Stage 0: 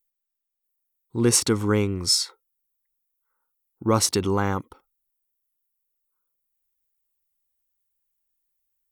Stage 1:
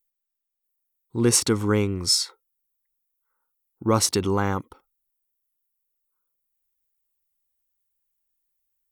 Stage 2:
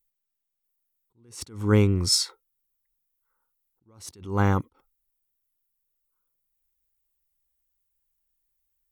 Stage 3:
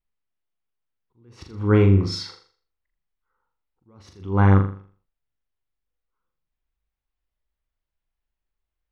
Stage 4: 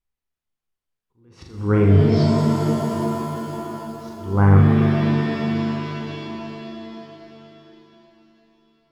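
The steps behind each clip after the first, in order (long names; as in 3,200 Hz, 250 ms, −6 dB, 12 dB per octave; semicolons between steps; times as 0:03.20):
no processing that can be heard
low-shelf EQ 150 Hz +9.5 dB; level that may rise only so fast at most 130 dB per second
high-frequency loss of the air 280 metres; on a send: flutter between parallel walls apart 7 metres, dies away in 0.45 s; on the sum: level +3.5 dB
treble cut that deepens with the level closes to 2,200 Hz, closed at −15.5 dBFS; reverb with rising layers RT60 3.8 s, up +7 semitones, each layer −2 dB, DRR 3 dB; level −1 dB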